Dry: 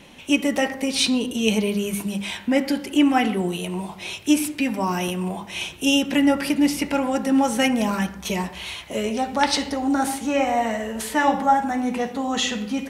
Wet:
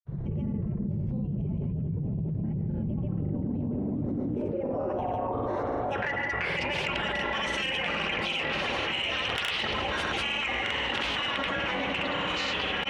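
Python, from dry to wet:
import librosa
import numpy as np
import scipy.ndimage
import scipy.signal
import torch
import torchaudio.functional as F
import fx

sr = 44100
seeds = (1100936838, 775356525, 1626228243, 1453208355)

p1 = fx.spec_gate(x, sr, threshold_db=-15, keep='weak')
p2 = fx.filter_sweep_lowpass(p1, sr, from_hz=150.0, to_hz=3000.0, start_s=3.14, end_s=6.88, q=3.3)
p3 = p2 + fx.echo_opening(p2, sr, ms=319, hz=400, octaves=1, feedback_pct=70, wet_db=0, dry=0)
p4 = fx.granulator(p3, sr, seeds[0], grain_ms=100.0, per_s=20.0, spray_ms=100.0, spread_st=0)
p5 = 10.0 ** (-16.0 / 20.0) * np.tanh(p4 / 10.0 ** (-16.0 / 20.0))
p6 = fx.env_flatten(p5, sr, amount_pct=100)
y = F.gain(torch.from_numpy(p6), -7.5).numpy()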